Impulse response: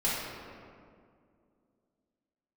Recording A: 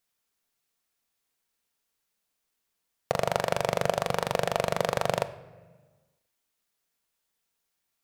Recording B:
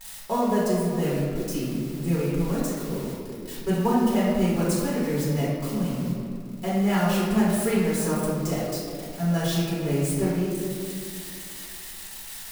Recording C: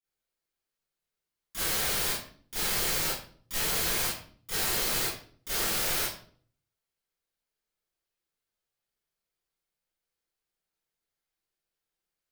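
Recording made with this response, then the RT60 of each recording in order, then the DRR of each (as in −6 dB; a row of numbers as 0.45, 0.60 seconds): B; 1.4, 2.2, 0.50 seconds; 10.5, −9.0, −14.5 decibels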